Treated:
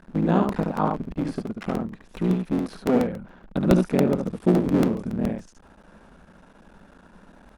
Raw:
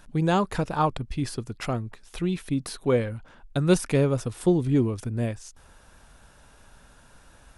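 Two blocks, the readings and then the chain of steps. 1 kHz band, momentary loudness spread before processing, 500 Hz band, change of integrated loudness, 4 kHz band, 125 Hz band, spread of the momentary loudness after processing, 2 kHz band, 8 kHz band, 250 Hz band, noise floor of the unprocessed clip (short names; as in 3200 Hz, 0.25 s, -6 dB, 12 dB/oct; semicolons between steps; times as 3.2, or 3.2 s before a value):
0.0 dB, 11 LU, +1.0 dB, +2.0 dB, -5.0 dB, -1.0 dB, 10 LU, -2.0 dB, n/a, +4.0 dB, -54 dBFS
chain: cycle switcher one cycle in 3, muted; LPF 1100 Hz 6 dB/oct; in parallel at 0 dB: compressor, threshold -37 dBFS, peak gain reduction 20 dB; on the sum: resonant low shelf 150 Hz -6.5 dB, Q 3; on a send: echo 72 ms -4 dB; on the sum: crackling interface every 0.14 s, samples 64, repeat, from 0.49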